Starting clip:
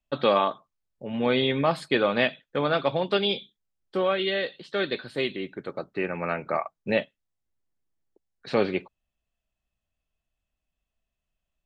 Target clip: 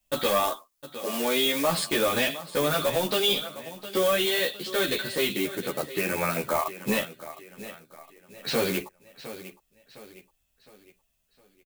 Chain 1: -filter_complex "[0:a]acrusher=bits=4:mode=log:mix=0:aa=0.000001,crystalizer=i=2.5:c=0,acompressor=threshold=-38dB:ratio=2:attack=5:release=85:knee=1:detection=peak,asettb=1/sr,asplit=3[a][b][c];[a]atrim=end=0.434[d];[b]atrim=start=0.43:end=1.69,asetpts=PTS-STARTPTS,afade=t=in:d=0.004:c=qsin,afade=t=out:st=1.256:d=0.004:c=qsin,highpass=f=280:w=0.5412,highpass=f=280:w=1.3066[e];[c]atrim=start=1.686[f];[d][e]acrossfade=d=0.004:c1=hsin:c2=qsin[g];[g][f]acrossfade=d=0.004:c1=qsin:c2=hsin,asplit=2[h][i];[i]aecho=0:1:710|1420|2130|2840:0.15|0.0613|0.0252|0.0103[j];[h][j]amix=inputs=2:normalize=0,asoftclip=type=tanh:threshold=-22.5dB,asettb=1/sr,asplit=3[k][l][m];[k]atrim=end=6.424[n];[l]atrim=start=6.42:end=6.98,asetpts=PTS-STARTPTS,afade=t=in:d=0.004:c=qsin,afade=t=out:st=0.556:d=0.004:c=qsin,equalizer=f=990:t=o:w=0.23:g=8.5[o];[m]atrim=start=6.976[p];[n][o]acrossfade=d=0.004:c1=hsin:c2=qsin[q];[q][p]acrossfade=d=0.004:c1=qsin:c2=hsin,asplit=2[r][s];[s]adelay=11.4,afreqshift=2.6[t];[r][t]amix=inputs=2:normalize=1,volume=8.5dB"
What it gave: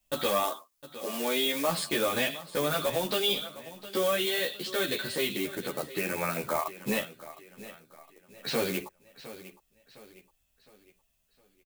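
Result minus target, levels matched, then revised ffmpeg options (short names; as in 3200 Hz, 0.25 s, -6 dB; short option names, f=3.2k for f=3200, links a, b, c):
compressor: peak gain reduction +5 dB
-filter_complex "[0:a]acrusher=bits=4:mode=log:mix=0:aa=0.000001,crystalizer=i=2.5:c=0,acompressor=threshold=-28dB:ratio=2:attack=5:release=85:knee=1:detection=peak,asettb=1/sr,asplit=3[a][b][c];[a]atrim=end=0.434[d];[b]atrim=start=0.43:end=1.69,asetpts=PTS-STARTPTS,afade=t=in:d=0.004:c=qsin,afade=t=out:st=1.256:d=0.004:c=qsin,highpass=f=280:w=0.5412,highpass=f=280:w=1.3066[e];[c]atrim=start=1.686[f];[d][e]acrossfade=d=0.004:c1=hsin:c2=qsin[g];[g][f]acrossfade=d=0.004:c1=qsin:c2=hsin,asplit=2[h][i];[i]aecho=0:1:710|1420|2130|2840:0.15|0.0613|0.0252|0.0103[j];[h][j]amix=inputs=2:normalize=0,asoftclip=type=tanh:threshold=-22.5dB,asettb=1/sr,asplit=3[k][l][m];[k]atrim=end=6.424[n];[l]atrim=start=6.42:end=6.98,asetpts=PTS-STARTPTS,afade=t=in:d=0.004:c=qsin,afade=t=out:st=0.556:d=0.004:c=qsin,equalizer=f=990:t=o:w=0.23:g=8.5[o];[m]atrim=start=6.976[p];[n][o]acrossfade=d=0.004:c1=hsin:c2=qsin[q];[q][p]acrossfade=d=0.004:c1=qsin:c2=hsin,asplit=2[r][s];[s]adelay=11.4,afreqshift=2.6[t];[r][t]amix=inputs=2:normalize=1,volume=8.5dB"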